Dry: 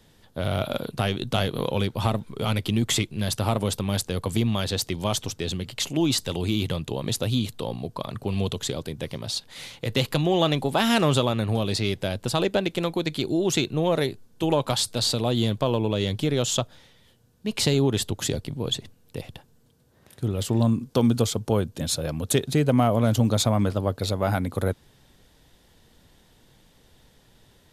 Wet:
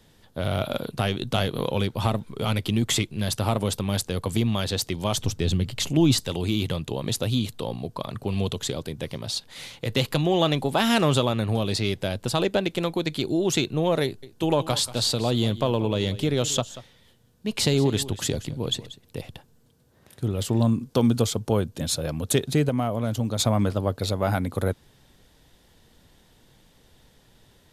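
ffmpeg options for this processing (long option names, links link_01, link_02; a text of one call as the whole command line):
ffmpeg -i in.wav -filter_complex "[0:a]asettb=1/sr,asplit=3[link_01][link_02][link_03];[link_01]atrim=end=5.174[link_04];[link_02]atrim=start=5.17:end=6.2,asetpts=PTS-STARTPTS,afade=type=in:duration=0.004:curve=qsin,afade=type=out:start_time=1.026:duration=0.004:curve=qsin,lowshelf=frequency=200:gain=11[link_05];[link_03]atrim=start=6.196[link_06];[link_04][link_05]acrossfade=duration=0.004:curve1=hsin:curve2=qsin[link_07];[link_07][link_06]acrossfade=duration=0.004:curve1=qsin:curve2=hsin,asettb=1/sr,asplit=3[link_08][link_09][link_10];[link_08]atrim=end=14.044[link_11];[link_09]atrim=start=14.04:end=19.23,asetpts=PTS-STARTPTS,afade=type=in:duration=0.004:curve=qsin,afade=type=out:start_time=5.186:duration=0.004:curve=qsin,aecho=1:1:186:0.158,atrim=end_sample=228879[link_12];[link_10]atrim=start=19.226[link_13];[link_11][link_12]acrossfade=duration=0.004:curve1=hsin:curve2=qsin[link_14];[link_14][link_13]acrossfade=duration=0.004:curve1=qsin:curve2=hsin,asplit=3[link_15][link_16][link_17];[link_15]atrim=end=22.692[link_18];[link_16]atrim=start=22.688:end=23.392,asetpts=PTS-STARTPTS,volume=-5.5dB[link_19];[link_17]atrim=start=23.388[link_20];[link_18][link_19]acrossfade=duration=0.004:curve1=hsin:curve2=hsin[link_21];[link_21][link_20]acrossfade=duration=0.004:curve1=hsin:curve2=hsin" out.wav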